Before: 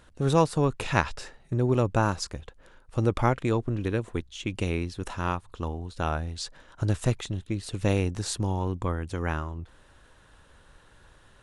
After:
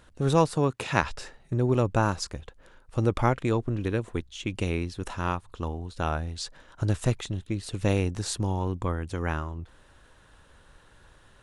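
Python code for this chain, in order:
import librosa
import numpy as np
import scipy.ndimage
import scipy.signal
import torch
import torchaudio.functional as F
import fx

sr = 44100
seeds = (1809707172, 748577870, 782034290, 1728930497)

y = fx.highpass(x, sr, hz=110.0, slope=12, at=(0.56, 1.02))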